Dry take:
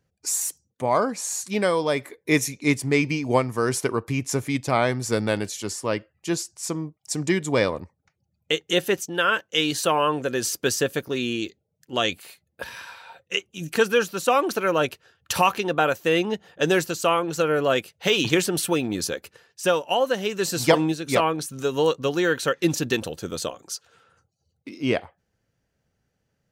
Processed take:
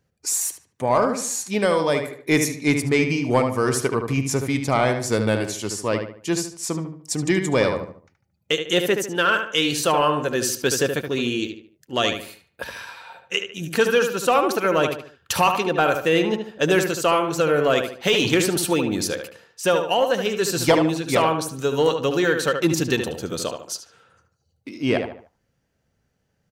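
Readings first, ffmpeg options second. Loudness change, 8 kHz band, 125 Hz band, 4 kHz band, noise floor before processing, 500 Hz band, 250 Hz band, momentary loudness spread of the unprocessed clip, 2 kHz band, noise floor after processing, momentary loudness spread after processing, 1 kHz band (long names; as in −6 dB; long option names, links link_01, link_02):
+2.5 dB, +2.0 dB, +3.0 dB, +2.0 dB, −76 dBFS, +2.5 dB, +2.5 dB, 9 LU, +2.0 dB, −71 dBFS, 9 LU, +2.0 dB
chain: -filter_complex "[0:a]asplit=2[link_01][link_02];[link_02]adelay=74,lowpass=frequency=2900:poles=1,volume=-6.5dB,asplit=2[link_03][link_04];[link_04]adelay=74,lowpass=frequency=2900:poles=1,volume=0.38,asplit=2[link_05][link_06];[link_06]adelay=74,lowpass=frequency=2900:poles=1,volume=0.38,asplit=2[link_07][link_08];[link_08]adelay=74,lowpass=frequency=2900:poles=1,volume=0.38[link_09];[link_01][link_03][link_05][link_07][link_09]amix=inputs=5:normalize=0,acontrast=70,volume=-4.5dB"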